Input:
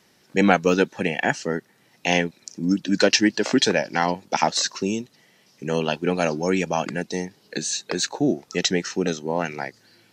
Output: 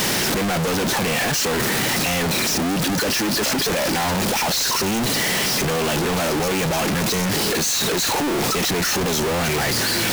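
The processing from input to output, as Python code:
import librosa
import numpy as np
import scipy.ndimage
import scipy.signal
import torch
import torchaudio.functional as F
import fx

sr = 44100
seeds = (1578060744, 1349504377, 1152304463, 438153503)

y = np.sign(x) * np.sqrt(np.mean(np.square(x)))
y = y * 10.0 ** (3.0 / 20.0)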